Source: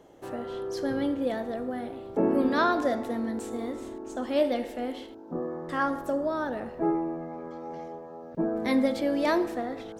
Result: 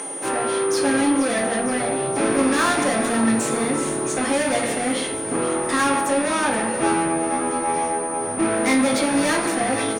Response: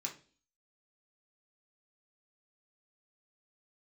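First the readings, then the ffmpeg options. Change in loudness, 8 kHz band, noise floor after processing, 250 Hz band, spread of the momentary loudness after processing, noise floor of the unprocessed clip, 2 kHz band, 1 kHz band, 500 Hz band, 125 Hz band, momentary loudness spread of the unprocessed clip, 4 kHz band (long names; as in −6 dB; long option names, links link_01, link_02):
+8.5 dB, +29.0 dB, −27 dBFS, +7.5 dB, 4 LU, −44 dBFS, +12.5 dB, +10.0 dB, +6.5 dB, +9.0 dB, 14 LU, +13.0 dB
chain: -filter_complex "[0:a]acompressor=mode=upward:threshold=-47dB:ratio=2.5,asplit=2[link_01][link_02];[link_02]highpass=frequency=720:poles=1,volume=30dB,asoftclip=type=tanh:threshold=-12.5dB[link_03];[link_01][link_03]amix=inputs=2:normalize=0,lowpass=frequency=5800:poles=1,volume=-6dB,aeval=exprs='val(0)+0.0355*sin(2*PI*9300*n/s)':channel_layout=same,asplit=8[link_04][link_05][link_06][link_07][link_08][link_09][link_10][link_11];[link_05]adelay=472,afreqshift=-75,volume=-13dB[link_12];[link_06]adelay=944,afreqshift=-150,volume=-17dB[link_13];[link_07]adelay=1416,afreqshift=-225,volume=-21dB[link_14];[link_08]adelay=1888,afreqshift=-300,volume=-25dB[link_15];[link_09]adelay=2360,afreqshift=-375,volume=-29.1dB[link_16];[link_10]adelay=2832,afreqshift=-450,volume=-33.1dB[link_17];[link_11]adelay=3304,afreqshift=-525,volume=-37.1dB[link_18];[link_04][link_12][link_13][link_14][link_15][link_16][link_17][link_18]amix=inputs=8:normalize=0[link_19];[1:a]atrim=start_sample=2205[link_20];[link_19][link_20]afir=irnorm=-1:irlink=0"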